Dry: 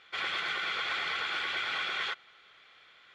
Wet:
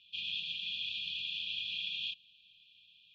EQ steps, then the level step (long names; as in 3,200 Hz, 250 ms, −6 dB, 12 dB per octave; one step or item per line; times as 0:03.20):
linear-phase brick-wall band-stop 230–2,400 Hz
low-pass with resonance 3,400 Hz, resonance Q 1.7
−4.5 dB